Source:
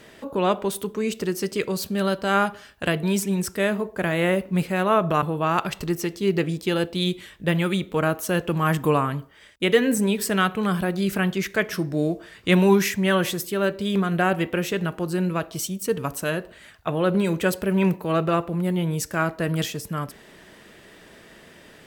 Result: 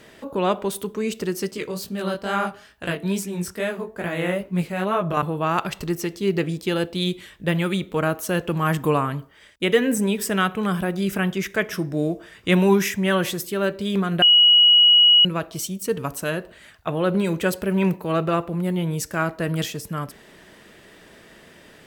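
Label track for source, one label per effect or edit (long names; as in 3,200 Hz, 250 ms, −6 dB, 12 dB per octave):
1.510000	5.170000	chorus effect 2.3 Hz, delay 16 ms, depth 7 ms
9.650000	13.120000	notch filter 4,300 Hz, Q 8.1
14.220000	15.250000	beep over 2,910 Hz −10 dBFS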